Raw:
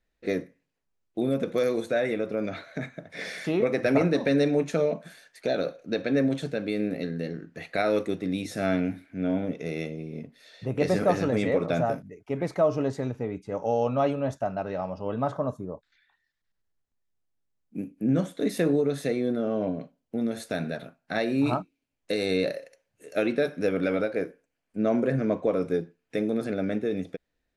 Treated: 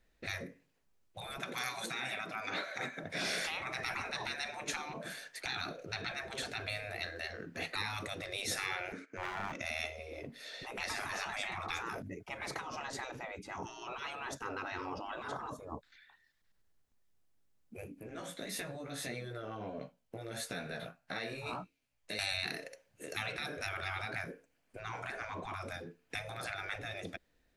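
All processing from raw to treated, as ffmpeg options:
ffmpeg -i in.wav -filter_complex "[0:a]asettb=1/sr,asplit=3[link_01][link_02][link_03];[link_01]atrim=end=1.374[link_04];[link_02]atrim=start=1.37:end=3.04,asetpts=PTS-STARTPTS,afade=type=in:duration=0.004:curve=qsin,afade=type=out:start_time=1.666:duration=0.004:curve=qsin,highpass=270,aecho=1:1:5.2:0.33,atrim=end_sample=73647[link_05];[link_03]atrim=start=3.036[link_06];[link_04][link_05]acrossfade=duration=0.004:curve1=hsin:curve2=qsin[link_07];[link_07][link_06]acrossfade=duration=0.004:curve1=qsin:curve2=hsin,asettb=1/sr,asplit=3[link_08][link_09][link_10];[link_08]atrim=end=8.924[link_11];[link_09]atrim=start=8.92:end=9.61,asetpts=PTS-STARTPTS,afade=type=in:duration=0.004:curve=qsin,afade=type=out:start_time=0.686:duration=0.004:curve=qsin,agate=range=-14dB:threshold=-55dB:ratio=16:release=100:detection=peak,highpass=330,equalizer=frequency=450:width_type=q:width=4:gain=10,equalizer=frequency=740:width_type=q:width=4:gain=-10,equalizer=frequency=1300:width_type=q:width=4:gain=8,equalizer=frequency=3600:width_type=q:width=4:gain=-8,equalizer=frequency=6500:width_type=q:width=4:gain=9,lowpass=frequency=7900:width=0.5412,lowpass=frequency=7900:width=1.3066,aeval=exprs='clip(val(0),-1,0.0266)':channel_layout=same[link_12];[link_10]atrim=start=9.606[link_13];[link_11][link_12]acrossfade=duration=0.004:curve1=hsin:curve2=qsin[link_14];[link_14][link_13]acrossfade=duration=0.004:curve1=qsin:curve2=hsin,asettb=1/sr,asplit=3[link_15][link_16][link_17];[link_15]atrim=end=18.004[link_18];[link_16]atrim=start=18:end=22.19,asetpts=PTS-STARTPTS,afade=type=in:duration=0.004:curve=qsin,afade=type=out:start_time=4.186:duration=0.004:curve=qsin,equalizer=frequency=290:width_type=o:width=1.5:gain=-11,acompressor=threshold=-38dB:ratio=2.5:attack=3.2:release=140:knee=1:detection=peak,flanger=delay=15.5:depth=2.5:speed=1.6[link_19];[link_17]atrim=start=22.186[link_20];[link_18][link_19]acrossfade=duration=0.004:curve1=hsin:curve2=qsin[link_21];[link_21][link_20]acrossfade=duration=0.004:curve1=qsin:curve2=hsin,acompressor=threshold=-25dB:ratio=6,afftfilt=real='re*lt(hypot(re,im),0.0398)':imag='im*lt(hypot(re,im),0.0398)':win_size=1024:overlap=0.75,volume=5.5dB" out.wav

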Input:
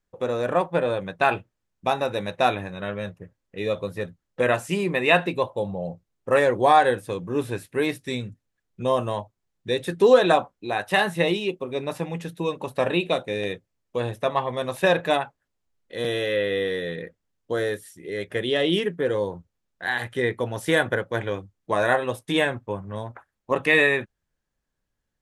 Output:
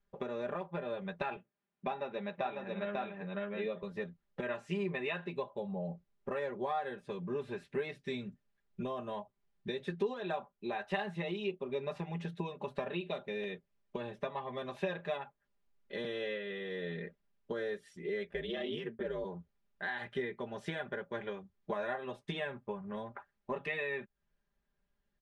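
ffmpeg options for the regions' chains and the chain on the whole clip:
ffmpeg -i in.wav -filter_complex "[0:a]asettb=1/sr,asplit=3[link_01][link_02][link_03];[link_01]atrim=end=1.364[link_04];[link_02]atrim=start=1.36:end=3.83,asetpts=PTS-STARTPTS,afade=type=in:duration=0.004:curve=qsin,afade=type=out:start_time=2.466:duration=0.004:curve=qsin,highpass=150,lowpass=3700,aecho=1:1:544:0.708,atrim=end_sample=108927[link_05];[link_03]atrim=start=3.826[link_06];[link_04][link_05]acrossfade=duration=0.004:curve1=hsin:curve2=qsin[link_07];[link_07][link_06]acrossfade=duration=0.004:curve1=qsin:curve2=hsin,asettb=1/sr,asplit=3[link_08][link_09][link_10];[link_08]atrim=end=18.314[link_11];[link_09]atrim=start=18.31:end=19.25,asetpts=PTS-STARTPTS,afade=type=in:duration=0.004:curve=qsin,afade=type=out:start_time=0.936:duration=0.004:curve=qsin,aeval=exprs='val(0)*sin(2*PI*56*n/s)':channel_layout=same,agate=range=-33dB:threshold=-39dB:ratio=3:release=100:detection=peak[link_12];[link_10]atrim=start=19.246[link_13];[link_11][link_12]acrossfade=duration=0.004:curve1=hsin:curve2=qsin[link_14];[link_14][link_13]acrossfade=duration=0.004:curve1=qsin:curve2=hsin,acompressor=threshold=-34dB:ratio=5,lowpass=3800,aecho=1:1:5:0.91,volume=-4dB" out.wav

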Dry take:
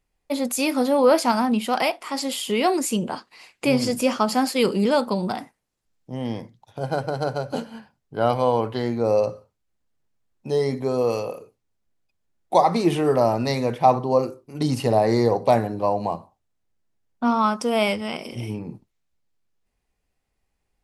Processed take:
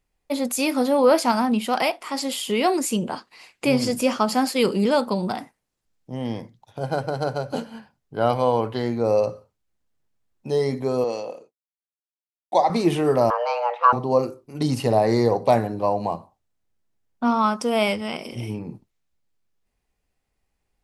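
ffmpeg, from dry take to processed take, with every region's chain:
ffmpeg -i in.wav -filter_complex "[0:a]asettb=1/sr,asplit=3[link_01][link_02][link_03];[link_01]atrim=end=11.044[link_04];[link_02]atrim=start=11.04:end=12.7,asetpts=PTS-STARTPTS,afade=type=in:duration=0.004:curve=qsin,afade=type=out:start_time=1.656:duration=0.004:curve=qsin,agate=range=-33dB:threshold=-46dB:ratio=3:release=100:detection=peak,highpass=270,equalizer=frequency=420:width_type=q:width=4:gain=-7,equalizer=frequency=1200:width_type=q:width=4:gain=-10,equalizer=frequency=2500:width_type=q:width=4:gain=-5,equalizer=frequency=5300:width_type=q:width=4:gain=-3,lowpass=frequency=7600:width=0.5412,lowpass=frequency=7600:width=1.3066[link_05];[link_03]atrim=start=12.696[link_06];[link_04][link_05]acrossfade=duration=0.004:curve1=hsin:curve2=qsin[link_07];[link_07][link_06]acrossfade=duration=0.004:curve1=qsin:curve2=hsin,asettb=1/sr,asplit=3[link_08][link_09][link_10];[link_08]atrim=end=13.304[link_11];[link_09]atrim=start=13.3:end=13.93,asetpts=PTS-STARTPTS,afade=type=in:duration=0.004:curve=qsin,afade=type=out:start_time=0.626:duration=0.004:curve=qsin,lowpass=2400,asubboost=boost=10.5:cutoff=73,afreqshift=360[link_12];[link_10]atrim=start=13.926[link_13];[link_11][link_12]acrossfade=duration=0.004:curve1=hsin:curve2=qsin[link_14];[link_14][link_13]acrossfade=duration=0.004:curve1=qsin:curve2=hsin" out.wav

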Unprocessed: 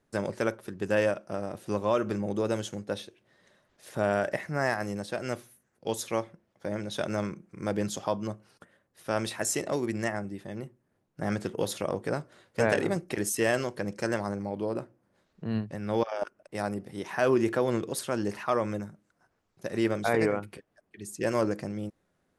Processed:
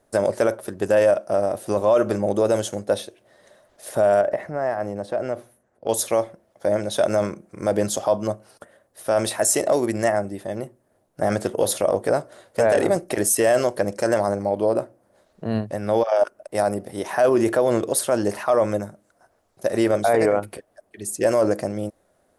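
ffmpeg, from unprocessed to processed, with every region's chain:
ffmpeg -i in.wav -filter_complex "[0:a]asettb=1/sr,asplit=3[link_01][link_02][link_03];[link_01]atrim=end=4.214[link_04];[link_02]atrim=start=4.21:end=5.89,asetpts=PTS-STARTPTS,afade=type=in:duration=0.004:curve=qsin,afade=type=out:start_time=1.676:duration=0.004:curve=qsin,lowpass=frequency=1300:poles=1,acompressor=threshold=-32dB:ratio=4:attack=3.2:release=140:knee=1:detection=peak[link_05];[link_03]atrim=start=5.886[link_06];[link_04][link_05]acrossfade=duration=0.004:curve1=hsin:curve2=qsin[link_07];[link_07][link_06]acrossfade=duration=0.004:curve1=qsin:curve2=hsin,equalizer=frequency=160:width_type=o:width=0.67:gain=-6,equalizer=frequency=630:width_type=o:width=0.67:gain=10,equalizer=frequency=2500:width_type=o:width=0.67:gain=-3,equalizer=frequency=10000:width_type=o:width=0.67:gain=9,alimiter=limit=-16.5dB:level=0:latency=1:release=19,volume=7dB" out.wav

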